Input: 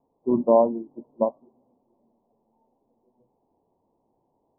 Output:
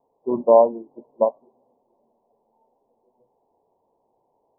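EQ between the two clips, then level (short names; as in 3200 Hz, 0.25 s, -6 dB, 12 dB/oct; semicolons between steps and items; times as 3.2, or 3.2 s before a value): band shelf 660 Hz +9.5 dB; -5.0 dB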